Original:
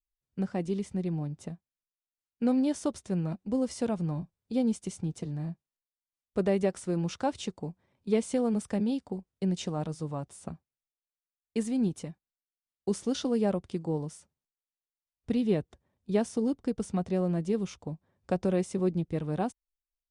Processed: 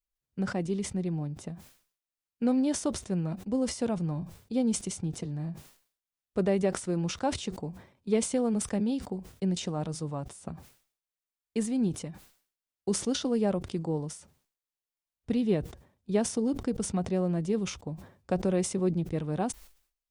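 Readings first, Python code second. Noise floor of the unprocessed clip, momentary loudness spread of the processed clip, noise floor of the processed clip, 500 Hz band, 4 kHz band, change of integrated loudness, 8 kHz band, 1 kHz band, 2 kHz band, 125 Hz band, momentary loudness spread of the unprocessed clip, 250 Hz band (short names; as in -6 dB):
under -85 dBFS, 14 LU, under -85 dBFS, 0.0 dB, +4.0 dB, +0.5 dB, +8.0 dB, +0.5 dB, +2.5 dB, +0.5 dB, 14 LU, 0.0 dB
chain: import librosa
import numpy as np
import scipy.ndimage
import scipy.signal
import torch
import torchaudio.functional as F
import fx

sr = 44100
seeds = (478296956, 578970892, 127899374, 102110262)

y = fx.sustainer(x, sr, db_per_s=120.0)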